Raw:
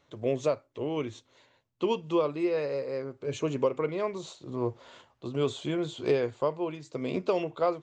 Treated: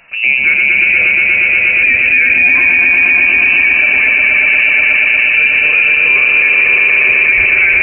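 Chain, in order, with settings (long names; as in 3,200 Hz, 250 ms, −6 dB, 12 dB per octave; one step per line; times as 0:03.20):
on a send: echo that builds up and dies away 119 ms, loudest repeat 5, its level −5.5 dB
on the sum: harmonic and percussive parts rebalanced harmonic +8 dB
voice inversion scrambler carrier 2,800 Hz
boost into a limiter +18.5 dB
level −1 dB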